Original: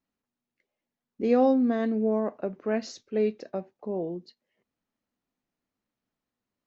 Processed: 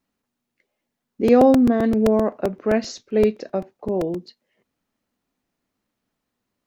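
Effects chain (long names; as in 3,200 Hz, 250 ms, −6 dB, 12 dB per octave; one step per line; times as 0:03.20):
0:01.39–0:01.83: high-shelf EQ 3,600 Hz → 2,500 Hz −11.5 dB
regular buffer underruns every 0.13 s, samples 128, repeat, from 0:00.76
level +8 dB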